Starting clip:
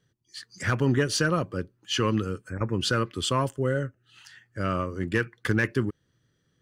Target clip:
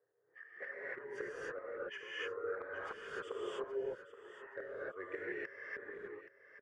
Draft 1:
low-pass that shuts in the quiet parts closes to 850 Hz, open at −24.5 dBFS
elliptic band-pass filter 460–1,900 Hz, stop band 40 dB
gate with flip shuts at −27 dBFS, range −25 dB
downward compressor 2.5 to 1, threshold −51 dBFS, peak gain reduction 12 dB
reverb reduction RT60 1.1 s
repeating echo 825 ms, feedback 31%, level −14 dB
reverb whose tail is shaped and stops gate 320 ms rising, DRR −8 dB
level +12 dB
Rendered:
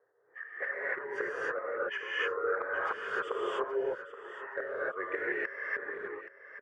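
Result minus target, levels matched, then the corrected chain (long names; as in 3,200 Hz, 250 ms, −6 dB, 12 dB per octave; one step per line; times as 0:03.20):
1,000 Hz band +3.5 dB
low-pass that shuts in the quiet parts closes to 850 Hz, open at −24.5 dBFS
elliptic band-pass filter 460–1,900 Hz, stop band 40 dB
gate with flip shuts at −27 dBFS, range −25 dB
downward compressor 2.5 to 1, threshold −51 dBFS, peak gain reduction 12 dB
parametric band 1,100 Hz −13 dB 2.9 octaves
reverb reduction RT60 1.1 s
repeating echo 825 ms, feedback 31%, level −14 dB
reverb whose tail is shaped and stops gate 320 ms rising, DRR −8 dB
level +12 dB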